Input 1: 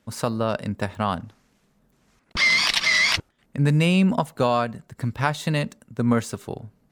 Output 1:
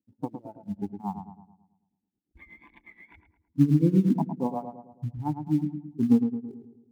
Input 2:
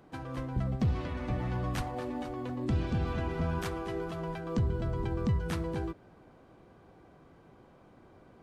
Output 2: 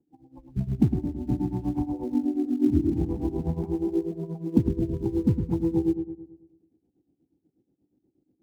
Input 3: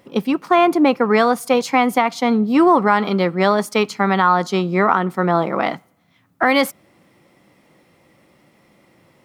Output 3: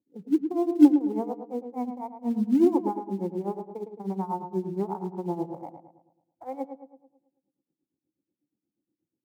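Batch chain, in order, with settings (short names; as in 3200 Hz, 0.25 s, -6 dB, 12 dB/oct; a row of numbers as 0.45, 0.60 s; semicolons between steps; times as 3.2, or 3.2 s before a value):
Wiener smoothing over 41 samples; HPF 51 Hz 12 dB/oct; spectral noise reduction 21 dB; vocal tract filter u; notch 620 Hz, Q 12; in parallel at -12 dB: short-mantissa float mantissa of 2-bit; on the sum: tremolo 8.3 Hz, depth 85%; darkening echo 0.109 s, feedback 50%, low-pass 1600 Hz, level -7.5 dB; match loudness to -27 LUFS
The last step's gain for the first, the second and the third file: +10.0, +18.0, +1.5 dB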